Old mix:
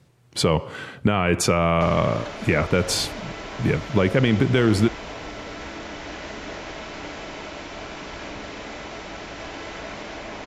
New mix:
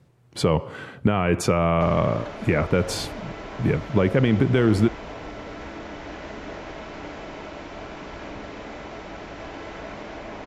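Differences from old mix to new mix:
speech: add high-shelf EQ 7,800 Hz +5 dB
master: add high-shelf EQ 2,400 Hz −10 dB

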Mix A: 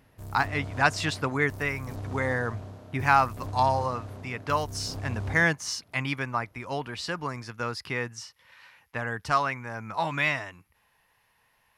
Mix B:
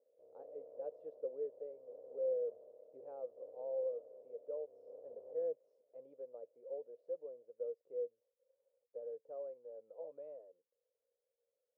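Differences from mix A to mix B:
speech: add octave-band graphic EQ 1,000/2,000/8,000 Hz −10/−12/+4 dB
master: add flat-topped band-pass 510 Hz, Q 5

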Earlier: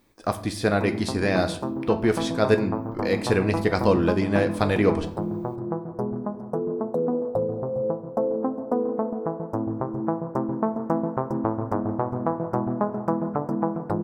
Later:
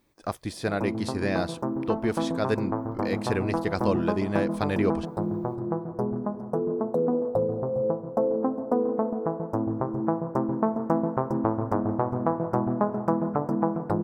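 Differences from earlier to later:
speech −3.5 dB
reverb: off

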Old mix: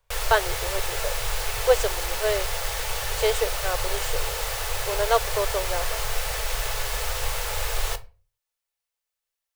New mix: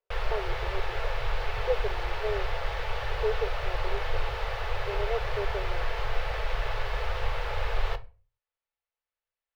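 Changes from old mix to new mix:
speech: add four-pole ladder band-pass 420 Hz, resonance 65%
master: add high-frequency loss of the air 340 metres

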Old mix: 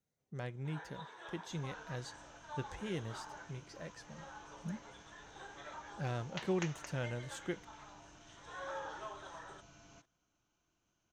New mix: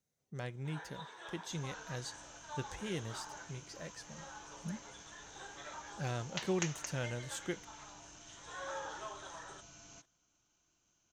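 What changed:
second sound: remove high-frequency loss of the air 61 metres
master: add high-shelf EQ 3,800 Hz +8 dB

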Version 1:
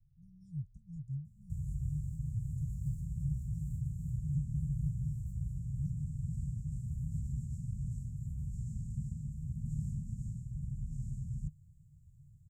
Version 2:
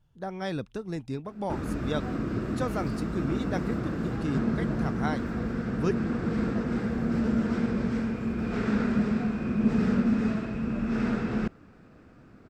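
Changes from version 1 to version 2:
speech: remove low-pass filter 3,100 Hz 12 dB per octave
master: remove Chebyshev band-stop filter 150–7,000 Hz, order 5

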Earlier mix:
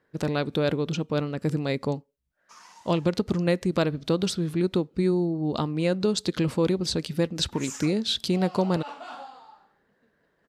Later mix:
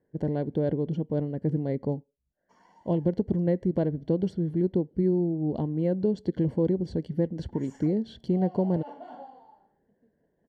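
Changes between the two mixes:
background +3.5 dB
master: add moving average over 35 samples

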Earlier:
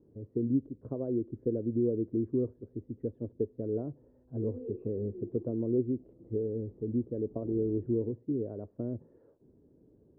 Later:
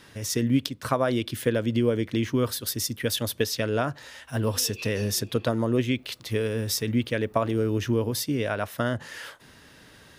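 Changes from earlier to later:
background −10.0 dB
master: remove transistor ladder low-pass 450 Hz, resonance 50%

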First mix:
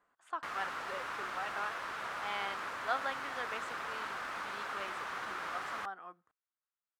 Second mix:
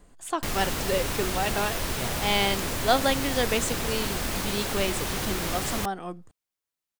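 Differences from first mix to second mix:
speech +4.5 dB
master: remove resonant band-pass 1,300 Hz, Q 2.4

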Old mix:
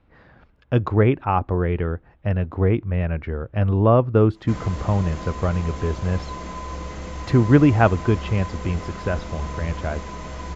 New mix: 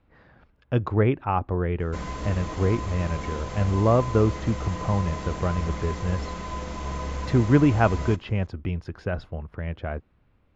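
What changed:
speech −4.0 dB
background: entry −2.55 s

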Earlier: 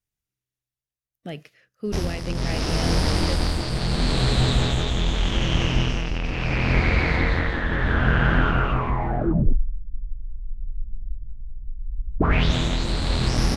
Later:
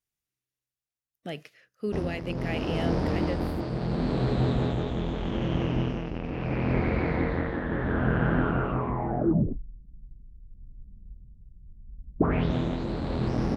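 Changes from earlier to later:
speech: add low-shelf EQ 160 Hz −9 dB
background: add resonant band-pass 320 Hz, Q 0.59

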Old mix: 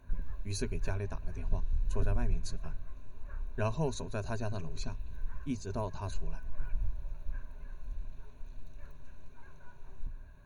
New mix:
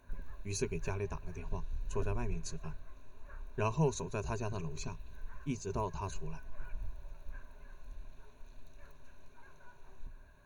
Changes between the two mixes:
speech: add EQ curve with evenly spaced ripples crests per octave 0.74, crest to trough 7 dB
background: add bass and treble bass −8 dB, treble +2 dB

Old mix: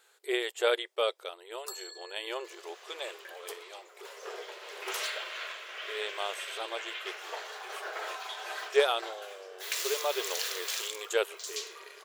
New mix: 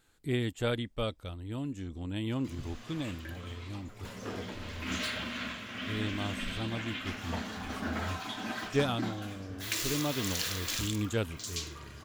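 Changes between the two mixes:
speech −6.0 dB
first sound: muted
master: remove linear-phase brick-wall high-pass 360 Hz

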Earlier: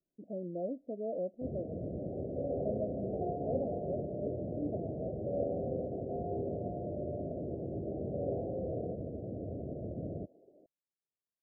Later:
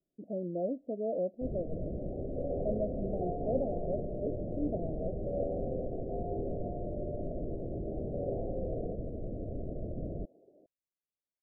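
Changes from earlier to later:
speech +3.5 dB
first sound: remove high-pass filter 77 Hz 24 dB per octave

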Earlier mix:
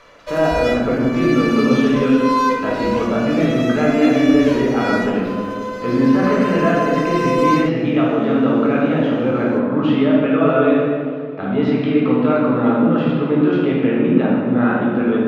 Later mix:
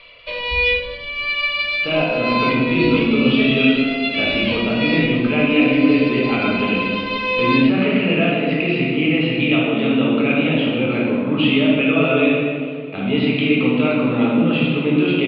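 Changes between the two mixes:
speech: entry +1.55 s
master: add drawn EQ curve 170 Hz 0 dB, 1,700 Hz −6 dB, 2,500 Hz +15 dB, 4,600 Hz +3 dB, 6,500 Hz −30 dB

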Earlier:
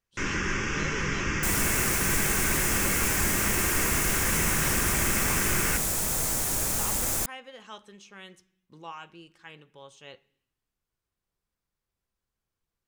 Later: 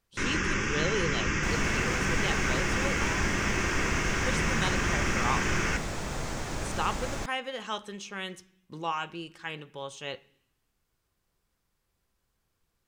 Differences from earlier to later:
speech +9.5 dB
second sound: add high-frequency loss of the air 160 metres

